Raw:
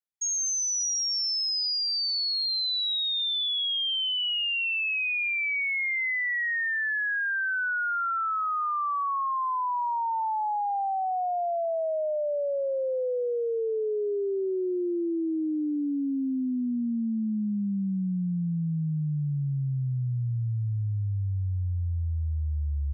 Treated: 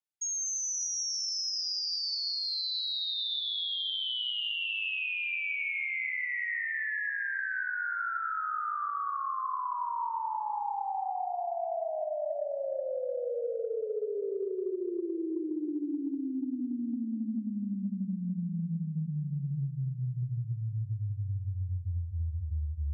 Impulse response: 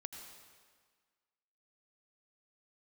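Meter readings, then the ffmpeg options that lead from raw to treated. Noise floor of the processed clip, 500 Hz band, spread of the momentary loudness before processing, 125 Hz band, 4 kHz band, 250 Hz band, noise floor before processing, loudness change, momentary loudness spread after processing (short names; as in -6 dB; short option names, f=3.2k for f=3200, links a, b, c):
-38 dBFS, -5.5 dB, 5 LU, -5.0 dB, -5.5 dB, -5.5 dB, -28 dBFS, -5.5 dB, 5 LU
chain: -filter_complex "[1:a]atrim=start_sample=2205,asetrate=22491,aresample=44100[a];[0:a][a]afir=irnorm=-1:irlink=0,acompressor=threshold=-27dB:ratio=6,volume=-3dB"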